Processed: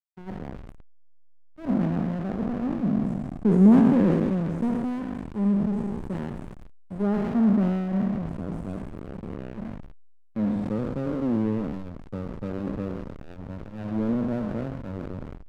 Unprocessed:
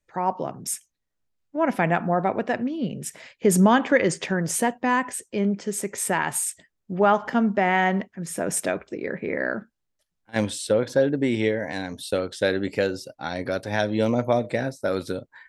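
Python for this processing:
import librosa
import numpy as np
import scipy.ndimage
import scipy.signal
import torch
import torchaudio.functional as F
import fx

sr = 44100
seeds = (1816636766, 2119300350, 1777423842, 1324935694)

y = fx.spec_trails(x, sr, decay_s=2.99)
y = fx.bandpass_q(y, sr, hz=210.0, q=2.6)
y = fx.backlash(y, sr, play_db=-25.0)
y = fx.sustainer(y, sr, db_per_s=32.0)
y = y * librosa.db_to_amplitude(2.0)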